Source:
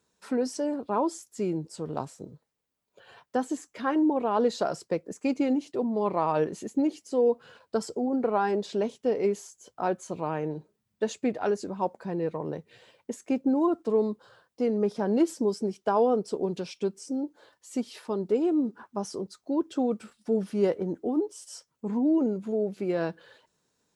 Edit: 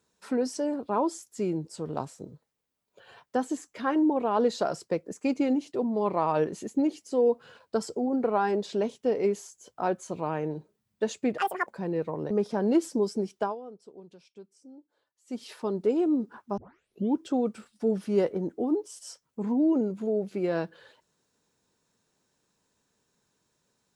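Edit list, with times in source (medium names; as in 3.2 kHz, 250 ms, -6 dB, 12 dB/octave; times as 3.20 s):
11.38–11.93 s: speed 193%
12.57–14.76 s: delete
15.85–17.88 s: dip -19 dB, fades 0.16 s
19.03 s: tape start 0.63 s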